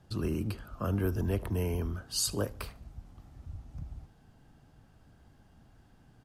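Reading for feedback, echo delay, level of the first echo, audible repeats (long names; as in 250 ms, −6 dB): 38%, 74 ms, −22.0 dB, 2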